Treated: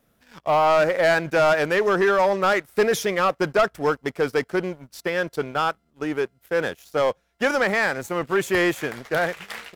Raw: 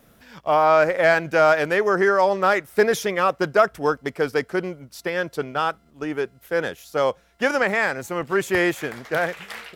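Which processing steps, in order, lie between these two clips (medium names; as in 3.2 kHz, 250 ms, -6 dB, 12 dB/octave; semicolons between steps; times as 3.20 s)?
waveshaping leveller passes 2; trim -6.5 dB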